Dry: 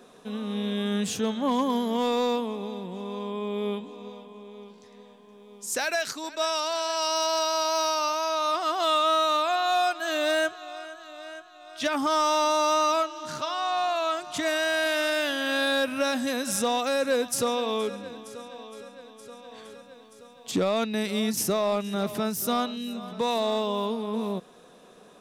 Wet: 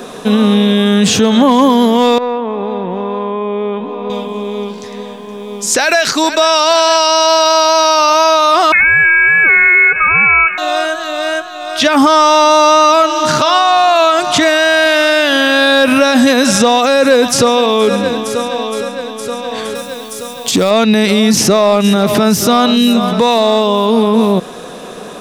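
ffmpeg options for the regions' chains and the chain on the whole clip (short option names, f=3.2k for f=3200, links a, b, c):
-filter_complex "[0:a]asettb=1/sr,asplit=3[a][b][c];[a]atrim=end=2.184[d];[b]atrim=start=2.18:end=4.1,asetpts=PTS-STARTPTS,afade=t=in:d=0.004:c=qsin,afade=t=out:st=1.916:d=0.004:c=qsin,lowpass=1.7k,equalizer=f=150:w=0.45:g=-8,acompressor=threshold=-37dB:ratio=6:attack=3.2:release=140:knee=1:detection=peak[e];[c]atrim=start=4.096[f];[d][e]acrossfade=d=0.004:c1=hsin:c2=qsin[g];[g][f]acrossfade=d=0.004:c1=qsin:c2=hsin,asettb=1/sr,asplit=3[h][i][j];[h]atrim=end=8.724[k];[i]atrim=start=8.72:end=10.58,asetpts=PTS-STARTPTS,afade=t=in:d=0.004:c=qsin,afade=t=out:st=1.856:d=0.004:c=qsin,asuperstop=centerf=950:order=8:qfactor=3.7,lowpass=f=2.5k:t=q:w=0.5098,lowpass=f=2.5k:t=q:w=0.6013,lowpass=f=2.5k:t=q:w=0.9,lowpass=f=2.5k:t=q:w=2.563,afreqshift=-2900[l];[j]atrim=start=10.576[m];[k][l]acrossfade=d=0.004:c1=hsin:c2=qsin[n];[n][m]acrossfade=d=0.004:c1=qsin:c2=hsin,asettb=1/sr,asplit=3[o][p][q];[o]atrim=end=19.754[r];[p]atrim=start=19.75:end=20.71,asetpts=PTS-STARTPTS,afade=t=in:d=0.004:c=qsin,afade=t=out:st=0.956:d=0.004:c=qsin,aemphasis=mode=production:type=50fm,acompressor=threshold=-32dB:ratio=6:attack=3.2:release=140:knee=1:detection=peak[s];[q]atrim=start=20.706[t];[r][s]acrossfade=d=0.004:c1=hsin:c2=qsin[u];[u][t]acrossfade=d=0.004:c1=qsin:c2=hsin,acrossover=split=6600[v][w];[w]acompressor=threshold=-49dB:ratio=4:attack=1:release=60[x];[v][x]amix=inputs=2:normalize=0,alimiter=level_in=25dB:limit=-1dB:release=50:level=0:latency=1,volume=-1dB"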